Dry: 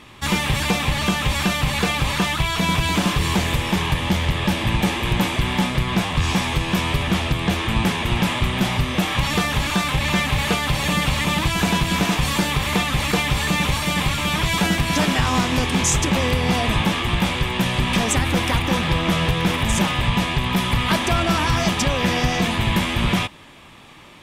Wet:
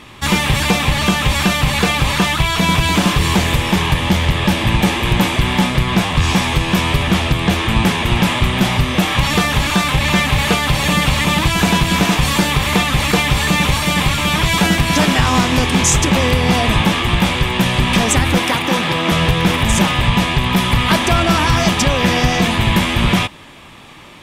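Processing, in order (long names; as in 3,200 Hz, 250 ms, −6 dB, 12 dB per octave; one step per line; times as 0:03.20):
0:18.38–0:19.12: high-pass filter 190 Hz 12 dB per octave
level +5.5 dB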